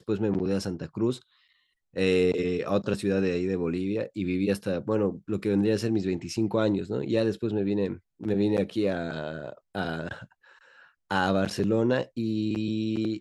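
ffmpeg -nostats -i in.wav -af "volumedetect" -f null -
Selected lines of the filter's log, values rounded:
mean_volume: -27.6 dB
max_volume: -10.5 dB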